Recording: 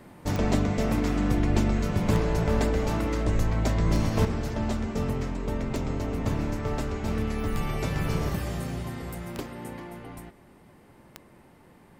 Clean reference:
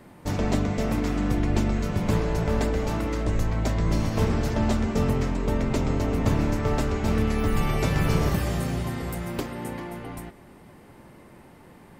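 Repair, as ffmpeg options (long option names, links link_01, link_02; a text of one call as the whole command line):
ffmpeg -i in.wav -af "adeclick=threshold=4,asetnsamples=nb_out_samples=441:pad=0,asendcmd='4.25 volume volume 5dB',volume=0dB" out.wav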